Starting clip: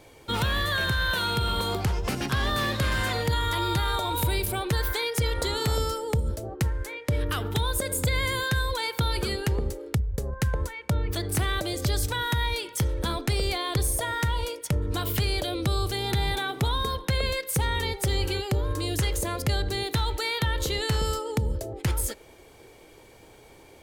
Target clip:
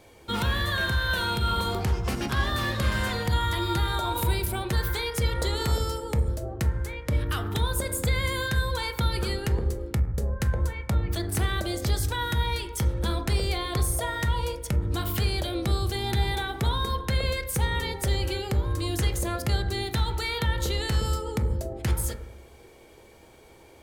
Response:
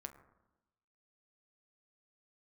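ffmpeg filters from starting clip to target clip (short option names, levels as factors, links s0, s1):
-filter_complex "[1:a]atrim=start_sample=2205[s0];[0:a][s0]afir=irnorm=-1:irlink=0,volume=1.5"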